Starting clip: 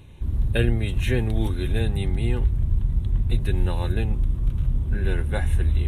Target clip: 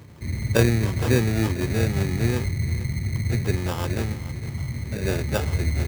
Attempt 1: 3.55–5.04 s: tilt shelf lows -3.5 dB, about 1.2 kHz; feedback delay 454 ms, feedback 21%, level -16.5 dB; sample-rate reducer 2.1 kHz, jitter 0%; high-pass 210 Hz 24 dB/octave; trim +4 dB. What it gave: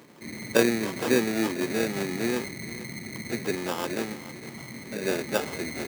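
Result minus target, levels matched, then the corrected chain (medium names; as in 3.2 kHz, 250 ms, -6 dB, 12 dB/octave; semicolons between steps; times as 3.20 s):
125 Hz band -14.5 dB
3.55–5.04 s: tilt shelf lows -3.5 dB, about 1.2 kHz; feedback delay 454 ms, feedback 21%, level -16.5 dB; sample-rate reducer 2.1 kHz, jitter 0%; high-pass 88 Hz 24 dB/octave; trim +4 dB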